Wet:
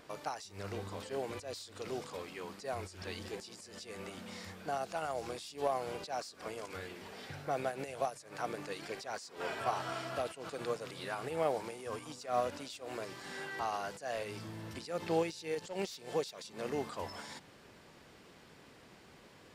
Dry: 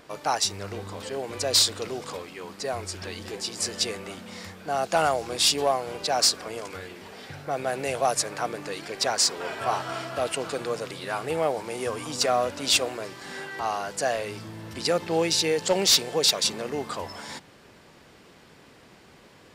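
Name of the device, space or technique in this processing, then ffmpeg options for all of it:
de-esser from a sidechain: -filter_complex "[0:a]asplit=2[a][b];[b]highpass=f=6.2k:w=0.5412,highpass=f=6.2k:w=1.3066,apad=whole_len=861864[c];[a][c]sidechaincompress=threshold=-46dB:ratio=6:attack=0.7:release=92,volume=-5.5dB"

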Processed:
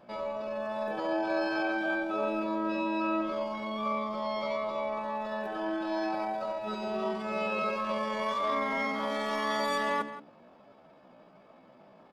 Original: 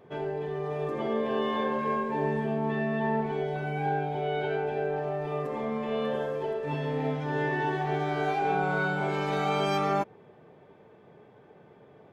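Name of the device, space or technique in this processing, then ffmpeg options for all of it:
chipmunk voice: -filter_complex "[0:a]lowshelf=f=290:g=4.5,bandreject=f=50:t=h:w=6,bandreject=f=100:t=h:w=6,bandreject=f=150:t=h:w=6,bandreject=f=200:t=h:w=6,bandreject=f=250:t=h:w=6,bandreject=f=300:t=h:w=6,asplit=2[a][b];[b]adelay=174.9,volume=-13dB,highshelf=f=4k:g=-3.94[c];[a][c]amix=inputs=2:normalize=0,asetrate=64194,aresample=44100,atempo=0.686977,volume=-3.5dB"

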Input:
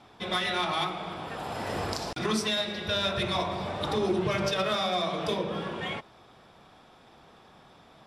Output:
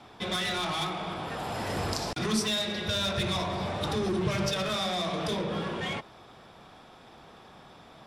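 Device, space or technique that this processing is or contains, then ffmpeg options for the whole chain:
one-band saturation: -filter_complex "[0:a]acrossover=split=220|4300[a][b][c];[b]asoftclip=type=tanh:threshold=-33.5dB[d];[a][d][c]amix=inputs=3:normalize=0,volume=3.5dB"

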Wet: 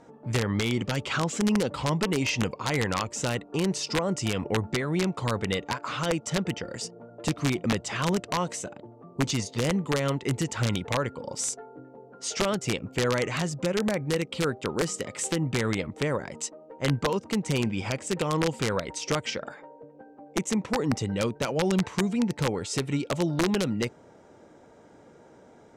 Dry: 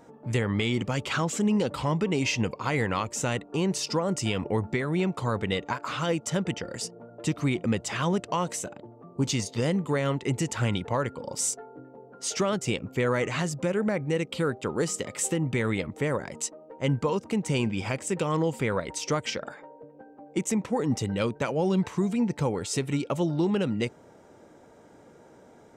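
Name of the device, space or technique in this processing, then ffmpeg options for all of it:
overflowing digital effects unit: -af "aeval=exprs='(mod(7.08*val(0)+1,2)-1)/7.08':c=same,lowpass=8.3k"

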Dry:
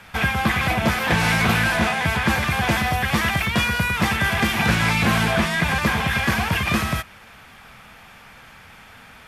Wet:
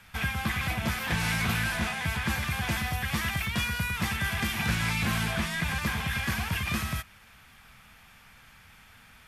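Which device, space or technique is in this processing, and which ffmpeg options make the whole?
smiley-face EQ: -af "lowshelf=f=82:g=5.5,equalizer=f=510:t=o:w=2:g=-6.5,highshelf=f=7.2k:g=5.5,volume=-8.5dB"

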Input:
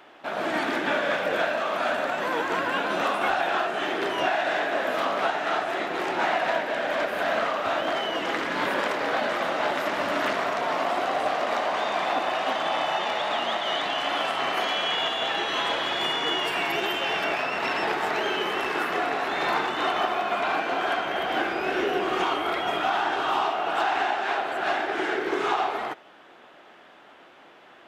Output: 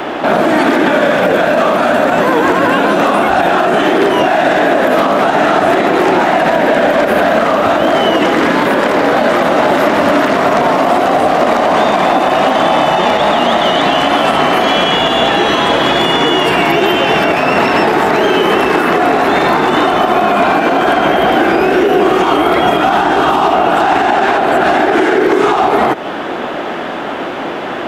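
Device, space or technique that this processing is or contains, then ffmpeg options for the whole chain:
mastering chain: -filter_complex "[0:a]equalizer=f=250:t=o:w=0.77:g=2.5,acrossover=split=260|7600[a][b][c];[a]acompressor=threshold=-48dB:ratio=4[d];[b]acompressor=threshold=-34dB:ratio=4[e];[c]acompressor=threshold=-57dB:ratio=4[f];[d][e][f]amix=inputs=3:normalize=0,acompressor=threshold=-38dB:ratio=2.5,tiltshelf=f=970:g=4.5,alimiter=level_in=31dB:limit=-1dB:release=50:level=0:latency=1,volume=-1dB"

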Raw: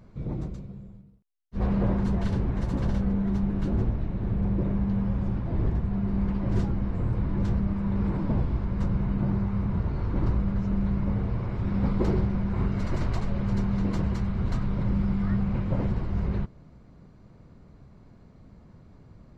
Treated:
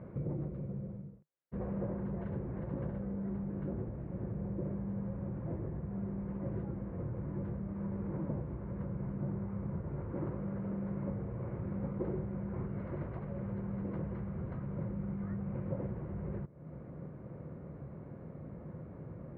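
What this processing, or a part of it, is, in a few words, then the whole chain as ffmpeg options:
bass amplifier: -filter_complex "[0:a]asettb=1/sr,asplit=3[a][b][c];[a]atrim=end=10.124[d];[b]atrim=start=10.12:end=11.09,asetpts=PTS-STARTPTS,afade=t=in:d=0.004:c=qsin,afade=t=out:st=0.966:d=0.004:c=qsin,highpass=f=150:p=1[e];[c]atrim=start=11.086[f];[d][e]acrossfade=d=0.004:c1=hsin:c2=qsin[g];[g][f]acrossfade=d=0.004:c1=qsin:c2=hsin,acompressor=threshold=-41dB:ratio=5,highpass=73,equalizer=f=150:t=q:w=4:g=7,equalizer=f=350:t=q:w=4:g=6,equalizer=f=530:t=q:w=4:g=10,lowpass=f=2.1k:w=0.5412,lowpass=f=2.1k:w=1.3066,volume=3dB"

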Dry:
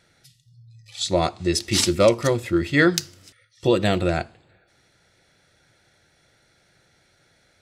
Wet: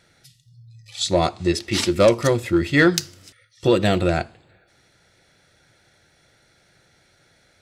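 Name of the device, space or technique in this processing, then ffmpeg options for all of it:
parallel distortion: -filter_complex "[0:a]asettb=1/sr,asplit=3[a][b][c];[a]atrim=end=1.524[d];[b]atrim=start=1.52:end=1.96,asetpts=PTS-STARTPTS,afade=t=in:d=0.004:c=qsin,afade=t=out:st=0.436:d=0.004:c=qsin,bass=f=250:g=-4,treble=f=4k:g=-9[e];[c]atrim=start=1.956[f];[d][e]acrossfade=d=0.004:c1=hsin:c2=qsin[g];[g][f]acrossfade=d=0.004:c1=qsin:c2=hsin,asplit=2[h][i];[i]asoftclip=type=hard:threshold=-14.5dB,volume=-6.5dB[j];[h][j]amix=inputs=2:normalize=0,volume=-1dB"

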